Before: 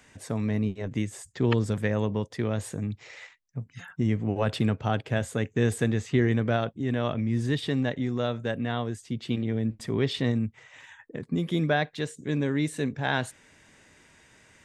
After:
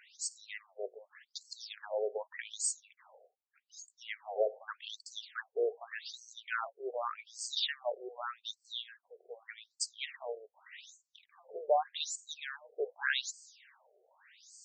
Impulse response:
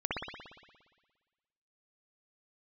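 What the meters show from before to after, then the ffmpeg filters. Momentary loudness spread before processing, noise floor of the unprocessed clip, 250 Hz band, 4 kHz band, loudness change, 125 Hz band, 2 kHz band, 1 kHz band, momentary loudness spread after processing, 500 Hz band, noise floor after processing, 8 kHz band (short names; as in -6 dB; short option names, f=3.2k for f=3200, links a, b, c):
10 LU, -60 dBFS, -33.0 dB, -1.5 dB, -10.0 dB, under -40 dB, -6.5 dB, -5.0 dB, 18 LU, -7.5 dB, -85 dBFS, +3.5 dB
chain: -af "bass=f=250:g=-12,treble=f=4k:g=12,afftfilt=real='re*between(b*sr/1024,520*pow(6100/520,0.5+0.5*sin(2*PI*0.84*pts/sr))/1.41,520*pow(6100/520,0.5+0.5*sin(2*PI*0.84*pts/sr))*1.41)':imag='im*between(b*sr/1024,520*pow(6100/520,0.5+0.5*sin(2*PI*0.84*pts/sr))/1.41,520*pow(6100/520,0.5+0.5*sin(2*PI*0.84*pts/sr))*1.41)':win_size=1024:overlap=0.75"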